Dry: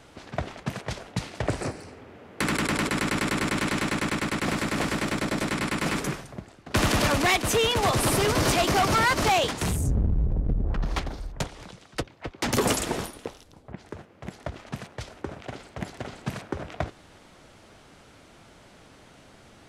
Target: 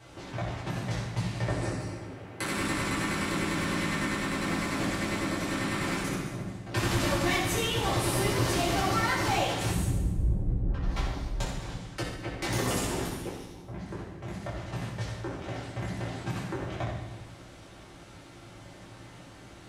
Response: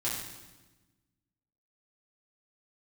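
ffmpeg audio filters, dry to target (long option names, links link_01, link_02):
-filter_complex "[0:a]acompressor=threshold=-34dB:ratio=2[link_01];[1:a]atrim=start_sample=2205[link_02];[link_01][link_02]afir=irnorm=-1:irlink=0,volume=-3.5dB"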